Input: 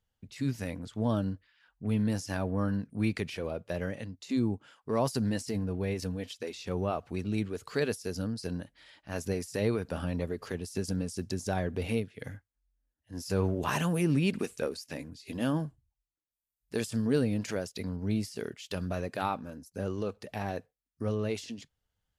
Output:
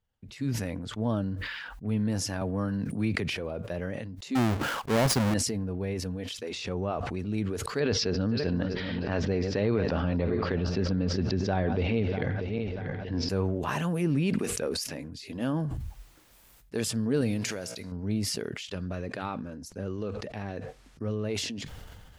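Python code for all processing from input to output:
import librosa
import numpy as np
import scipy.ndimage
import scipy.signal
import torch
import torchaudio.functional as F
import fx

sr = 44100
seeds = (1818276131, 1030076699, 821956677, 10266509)

y = fx.chain(x, sr, fx.highpass(hz=61.0, slope=12),
    fx.band_squash(depth_pct=40), at=(2.41, 3.29))
y = fx.chain(y, sr, fx.halfwave_hold(),
    fx.transient(attack_db=1, sustain_db=-6), at=(4.35, 5.34))
y = fx.chain(y, sr, fx.lowpass(hz=9200.0, slope=12),
    fx.pre_swell(db_per_s=32.0), at=(6.49, 7.19))
y = fx.chain(y, sr, fx.reverse_delay_fb(ms=319, feedback_pct=42, wet_db=-14),
    fx.steep_lowpass(hz=4800.0, slope=36),
    fx.env_flatten(amount_pct=70), at=(7.8, 13.29))
y = fx.chain(y, sr, fx.high_shelf(hz=2200.0, db=11.5),
    fx.comb_fb(f0_hz=59.0, decay_s=1.6, harmonics='all', damping=0.0, mix_pct=50), at=(17.21, 17.92))
y = fx.chain(y, sr, fx.lowpass(hz=8000.0, slope=12),
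    fx.dynamic_eq(hz=790.0, q=1.5, threshold_db=-44.0, ratio=4.0, max_db=-6), at=(18.63, 21.24))
y = fx.high_shelf(y, sr, hz=3700.0, db=-8.0)
y = fx.sustainer(y, sr, db_per_s=28.0)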